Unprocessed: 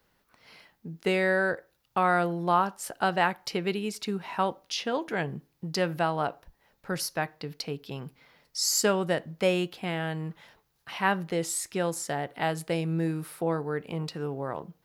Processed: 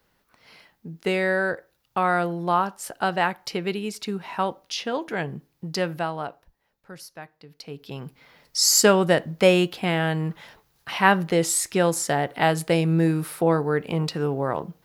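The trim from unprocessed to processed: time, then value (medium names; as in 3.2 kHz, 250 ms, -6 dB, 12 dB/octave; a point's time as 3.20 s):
5.81 s +2 dB
6.94 s -10.5 dB
7.48 s -10.5 dB
7.84 s +1 dB
8.57 s +8 dB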